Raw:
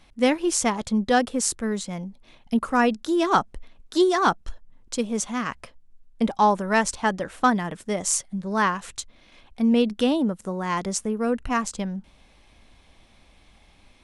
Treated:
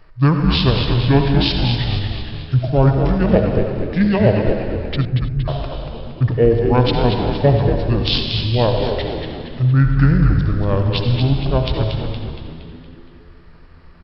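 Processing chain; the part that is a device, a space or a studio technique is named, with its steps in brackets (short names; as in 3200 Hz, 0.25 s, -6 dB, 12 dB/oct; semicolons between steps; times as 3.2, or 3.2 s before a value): monster voice (pitch shift -10 st; formant shift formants -2.5 st; low shelf 120 Hz +6 dB; reverb RT60 2.0 s, pre-delay 60 ms, DRR 4 dB); 5.05–5.48 inverse Chebyshev band-stop 670–3600 Hz, stop band 60 dB; frequency-shifting echo 0.233 s, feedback 52%, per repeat -90 Hz, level -6 dB; gain +4.5 dB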